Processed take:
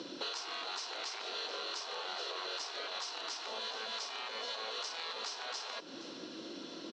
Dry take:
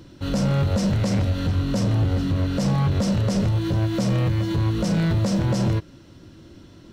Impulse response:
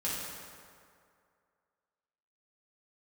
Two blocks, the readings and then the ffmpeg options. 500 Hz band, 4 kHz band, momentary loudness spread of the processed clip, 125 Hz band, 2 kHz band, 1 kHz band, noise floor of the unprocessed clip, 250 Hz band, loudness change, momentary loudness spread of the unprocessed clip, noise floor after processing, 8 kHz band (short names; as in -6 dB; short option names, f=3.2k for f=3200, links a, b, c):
-16.0 dB, -1.0 dB, 7 LU, under -40 dB, -6.0 dB, -8.0 dB, -47 dBFS, -29.0 dB, -17.0 dB, 2 LU, -48 dBFS, -8.5 dB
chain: -filter_complex "[0:a]afftfilt=real='re*lt(hypot(re,im),0.0794)':imag='im*lt(hypot(re,im),0.0794)':win_size=1024:overlap=0.75,highshelf=f=2.1k:g=9.5,acompressor=threshold=-41dB:ratio=6,highpass=f=240:w=0.5412,highpass=f=240:w=1.3066,equalizer=f=480:t=q:w=4:g=7,equalizer=f=690:t=q:w=4:g=3,equalizer=f=1.1k:t=q:w=4:g=3,equalizer=f=2k:t=q:w=4:g=-4,equalizer=f=4.1k:t=q:w=4:g=3,lowpass=f=5.7k:w=0.5412,lowpass=f=5.7k:w=1.3066,asplit=2[a][b];[b]aecho=0:1:469:0.168[c];[a][c]amix=inputs=2:normalize=0,volume=2dB"